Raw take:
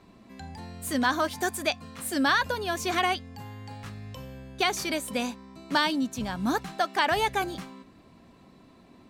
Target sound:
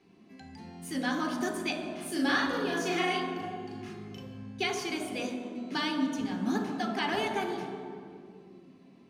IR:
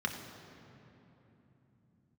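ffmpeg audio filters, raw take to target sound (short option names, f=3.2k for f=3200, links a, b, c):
-filter_complex "[0:a]asettb=1/sr,asplit=3[a][b][c];[a]atrim=end=1.924[d];[b]atrim=start=1.92:end=4.2,asetpts=PTS-STARTPTS,afade=t=in:d=0.004:c=qsin,afade=t=out:st=2.276:d=0.004:c=qsin,asplit=2[e][f];[f]adelay=39,volume=-2dB[g];[e][g]amix=inputs=2:normalize=0,atrim=end_sample=100548[h];[c]atrim=start=4.196[i];[d][h]acrossfade=d=0.004:c1=hsin:c2=qsin[j];[j][i]acrossfade=d=0.004:c1=qsin:c2=hsin[k];[1:a]atrim=start_sample=2205,asetrate=74970,aresample=44100[l];[k][l]afir=irnorm=-1:irlink=0,volume=-6.5dB"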